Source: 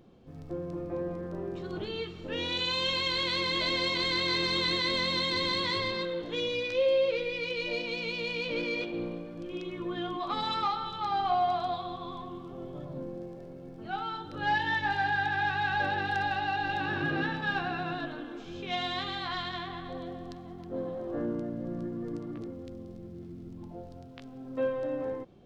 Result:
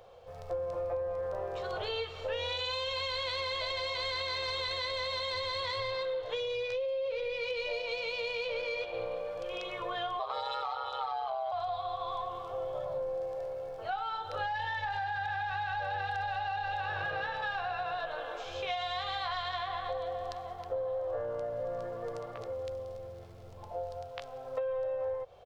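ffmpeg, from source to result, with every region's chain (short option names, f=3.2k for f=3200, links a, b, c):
-filter_complex "[0:a]asettb=1/sr,asplit=3[a][b][c];[a]atrim=end=10.194[d];[b]atrim=start=10.19:end=11.52,asetpts=PTS-STARTPTS,afade=t=in:d=0.004:c=qsin,afade=t=out:st=1.326:d=0.004:c=qsin,equalizer=f=490:t=o:w=0.28:g=12,aeval=exprs='val(0)*sin(2*PI*66*n/s)':c=same,highpass=160[e];[c]atrim=start=11.516[f];[d][e]acrossfade=d=0.004:c1=hsin:c2=qsin[g];[g][f]acrossfade=d=0.004:c1=qsin:c2=hsin,firequalizer=gain_entry='entry(100,0);entry(160,-16);entry(300,-22);entry(490,12);entry(1700,6)':delay=0.05:min_phase=1,alimiter=limit=-16.5dB:level=0:latency=1:release=20,acrossover=split=130[h][i];[i]acompressor=threshold=-32dB:ratio=10[j];[h][j]amix=inputs=2:normalize=0"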